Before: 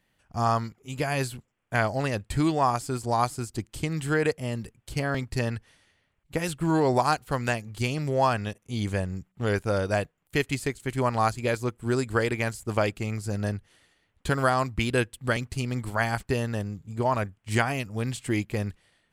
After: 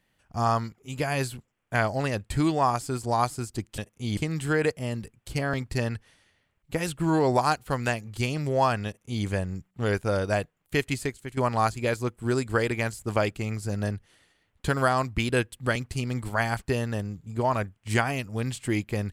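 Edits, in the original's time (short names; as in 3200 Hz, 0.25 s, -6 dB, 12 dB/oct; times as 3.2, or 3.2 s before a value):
8.47–8.86 copy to 3.78
10.62–10.98 fade out, to -11 dB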